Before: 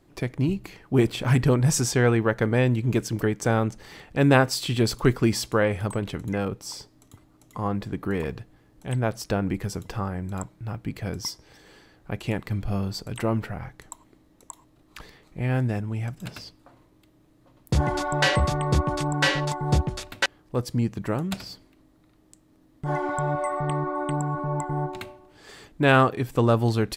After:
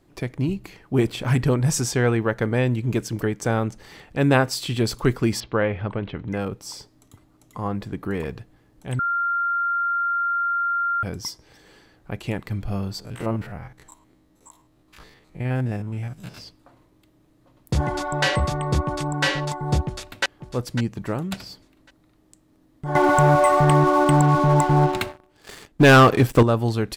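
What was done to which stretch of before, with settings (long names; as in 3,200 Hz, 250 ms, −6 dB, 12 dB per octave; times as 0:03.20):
0:05.40–0:06.32: low-pass filter 3,500 Hz 24 dB per octave
0:08.99–0:11.03: beep over 1,390 Hz −20 dBFS
0:13.00–0:16.38: spectrum averaged block by block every 50 ms
0:19.85–0:20.25: delay throw 550 ms, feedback 30%, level −10.5 dB
0:22.95–0:26.43: leveller curve on the samples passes 3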